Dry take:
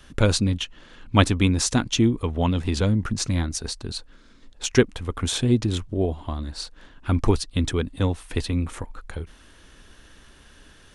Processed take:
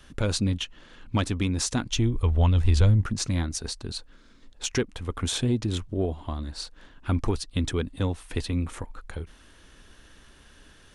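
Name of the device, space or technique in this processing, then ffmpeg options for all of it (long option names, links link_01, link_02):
soft clipper into limiter: -filter_complex "[0:a]asoftclip=type=tanh:threshold=-5.5dB,alimiter=limit=-13.5dB:level=0:latency=1:release=231,asplit=3[link_01][link_02][link_03];[link_01]afade=type=out:start_time=1.9:duration=0.02[link_04];[link_02]asubboost=boost=10:cutoff=79,afade=type=in:start_time=1.9:duration=0.02,afade=type=out:start_time=3.01:duration=0.02[link_05];[link_03]afade=type=in:start_time=3.01:duration=0.02[link_06];[link_04][link_05][link_06]amix=inputs=3:normalize=0,volume=-2.5dB"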